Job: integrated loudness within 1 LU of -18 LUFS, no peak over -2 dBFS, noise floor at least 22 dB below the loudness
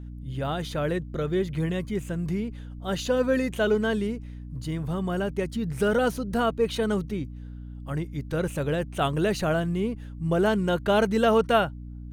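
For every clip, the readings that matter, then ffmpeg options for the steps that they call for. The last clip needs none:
hum 60 Hz; harmonics up to 300 Hz; hum level -36 dBFS; loudness -26.5 LUFS; peak -9.5 dBFS; loudness target -18.0 LUFS
-> -af "bandreject=f=60:t=h:w=4,bandreject=f=120:t=h:w=4,bandreject=f=180:t=h:w=4,bandreject=f=240:t=h:w=4,bandreject=f=300:t=h:w=4"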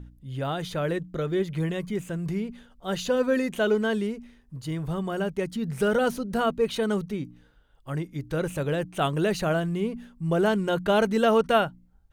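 hum none; loudness -27.0 LUFS; peak -9.5 dBFS; loudness target -18.0 LUFS
-> -af "volume=9dB,alimiter=limit=-2dB:level=0:latency=1"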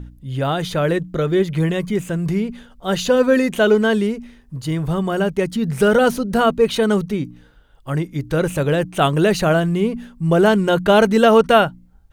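loudness -18.0 LUFS; peak -2.0 dBFS; noise floor -49 dBFS

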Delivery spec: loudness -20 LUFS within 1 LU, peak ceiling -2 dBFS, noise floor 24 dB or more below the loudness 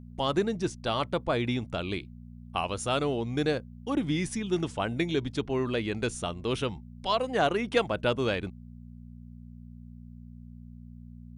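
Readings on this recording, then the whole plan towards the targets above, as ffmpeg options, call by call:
hum 60 Hz; harmonics up to 240 Hz; hum level -43 dBFS; loudness -30.0 LUFS; peak -12.5 dBFS; loudness target -20.0 LUFS
-> -af "bandreject=f=60:t=h:w=4,bandreject=f=120:t=h:w=4,bandreject=f=180:t=h:w=4,bandreject=f=240:t=h:w=4"
-af "volume=10dB"

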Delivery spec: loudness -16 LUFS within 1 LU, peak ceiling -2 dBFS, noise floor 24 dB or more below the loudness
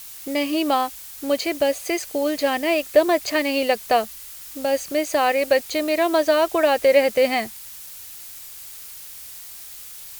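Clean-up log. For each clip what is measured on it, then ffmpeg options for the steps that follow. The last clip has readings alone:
noise floor -39 dBFS; noise floor target -45 dBFS; loudness -21.0 LUFS; peak -4.0 dBFS; loudness target -16.0 LUFS
-> -af "afftdn=nr=6:nf=-39"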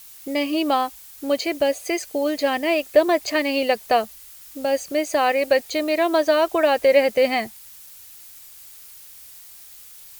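noise floor -44 dBFS; noise floor target -45 dBFS
-> -af "afftdn=nr=6:nf=-44"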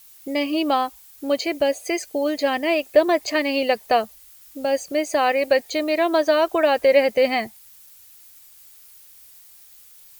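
noise floor -49 dBFS; loudness -21.0 LUFS; peak -4.0 dBFS; loudness target -16.0 LUFS
-> -af "volume=5dB,alimiter=limit=-2dB:level=0:latency=1"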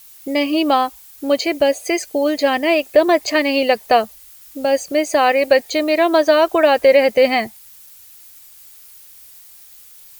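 loudness -16.0 LUFS; peak -2.0 dBFS; noise floor -44 dBFS

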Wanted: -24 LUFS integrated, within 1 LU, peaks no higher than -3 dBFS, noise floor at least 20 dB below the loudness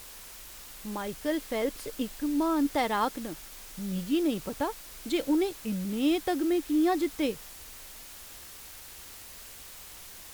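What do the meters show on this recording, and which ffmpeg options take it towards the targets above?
noise floor -47 dBFS; noise floor target -50 dBFS; loudness -30.0 LUFS; peak -15.0 dBFS; loudness target -24.0 LUFS
-> -af "afftdn=nr=6:nf=-47"
-af "volume=6dB"

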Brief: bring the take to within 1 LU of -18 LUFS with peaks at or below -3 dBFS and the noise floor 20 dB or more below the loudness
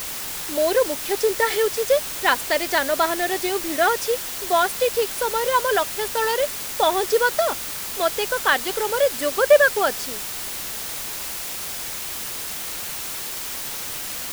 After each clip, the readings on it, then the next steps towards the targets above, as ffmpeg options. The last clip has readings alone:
noise floor -31 dBFS; noise floor target -42 dBFS; loudness -22.0 LUFS; peak -3.0 dBFS; loudness target -18.0 LUFS
-> -af "afftdn=nr=11:nf=-31"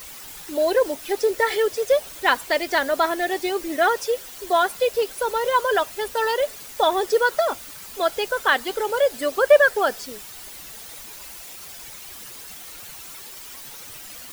noise floor -40 dBFS; noise floor target -42 dBFS
-> -af "afftdn=nr=6:nf=-40"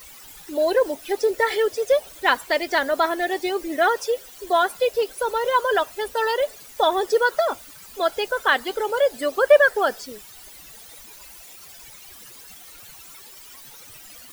noise floor -44 dBFS; loudness -22.0 LUFS; peak -3.5 dBFS; loudness target -18.0 LUFS
-> -af "volume=4dB,alimiter=limit=-3dB:level=0:latency=1"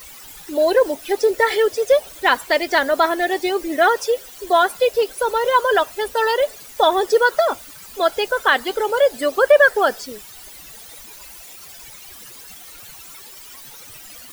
loudness -18.0 LUFS; peak -3.0 dBFS; noise floor -40 dBFS

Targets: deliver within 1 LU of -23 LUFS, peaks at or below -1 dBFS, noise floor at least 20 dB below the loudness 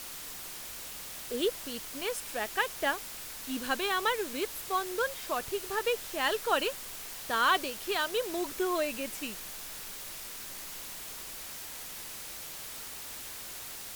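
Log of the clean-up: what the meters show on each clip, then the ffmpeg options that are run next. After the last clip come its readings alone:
noise floor -43 dBFS; noise floor target -54 dBFS; loudness -33.5 LUFS; peak -14.0 dBFS; loudness target -23.0 LUFS
-> -af "afftdn=nr=11:nf=-43"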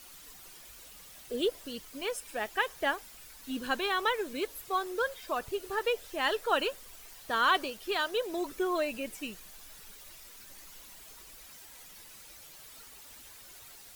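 noise floor -52 dBFS; loudness -32.0 LUFS; peak -14.5 dBFS; loudness target -23.0 LUFS
-> -af "volume=9dB"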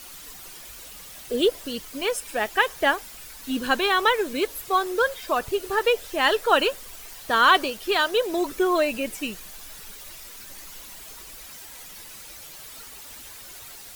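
loudness -23.0 LUFS; peak -5.5 dBFS; noise floor -43 dBFS

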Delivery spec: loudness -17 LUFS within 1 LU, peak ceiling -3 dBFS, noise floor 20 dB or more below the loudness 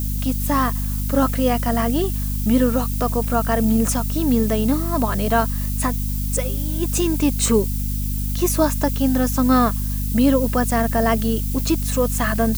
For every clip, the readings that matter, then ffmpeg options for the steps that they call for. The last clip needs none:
hum 50 Hz; harmonics up to 250 Hz; hum level -21 dBFS; noise floor -23 dBFS; noise floor target -40 dBFS; loudness -20.0 LUFS; peak -4.5 dBFS; loudness target -17.0 LUFS
-> -af "bandreject=f=50:t=h:w=4,bandreject=f=100:t=h:w=4,bandreject=f=150:t=h:w=4,bandreject=f=200:t=h:w=4,bandreject=f=250:t=h:w=4"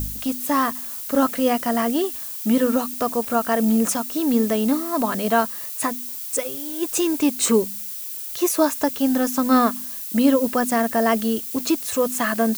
hum none; noise floor -32 dBFS; noise floor target -42 dBFS
-> -af "afftdn=nr=10:nf=-32"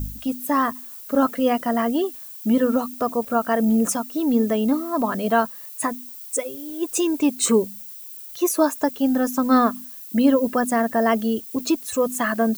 noise floor -39 dBFS; noise floor target -42 dBFS
-> -af "afftdn=nr=6:nf=-39"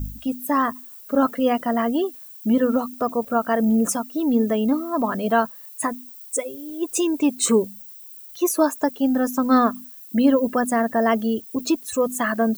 noise floor -42 dBFS; loudness -22.0 LUFS; peak -6.5 dBFS; loudness target -17.0 LUFS
-> -af "volume=5dB,alimiter=limit=-3dB:level=0:latency=1"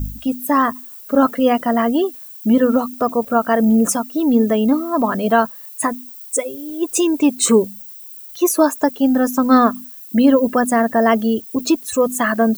loudness -17.0 LUFS; peak -3.0 dBFS; noise floor -37 dBFS

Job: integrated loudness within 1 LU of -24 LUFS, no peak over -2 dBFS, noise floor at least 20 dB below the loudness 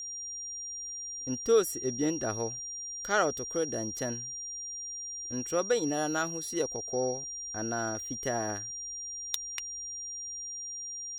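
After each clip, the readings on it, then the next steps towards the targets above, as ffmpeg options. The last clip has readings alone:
steady tone 5700 Hz; tone level -37 dBFS; loudness -32.5 LUFS; peak -13.5 dBFS; loudness target -24.0 LUFS
-> -af "bandreject=f=5.7k:w=30"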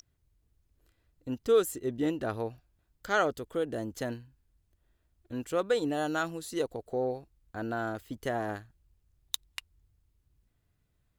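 steady tone none; loudness -32.5 LUFS; peak -13.5 dBFS; loudness target -24.0 LUFS
-> -af "volume=8.5dB"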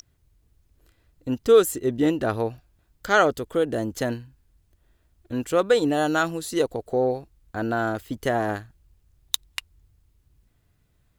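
loudness -24.0 LUFS; peak -5.0 dBFS; noise floor -66 dBFS

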